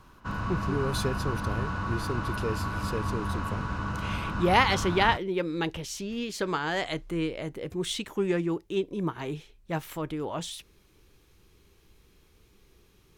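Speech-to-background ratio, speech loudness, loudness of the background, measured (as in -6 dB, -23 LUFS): 2.0 dB, -30.5 LUFS, -32.5 LUFS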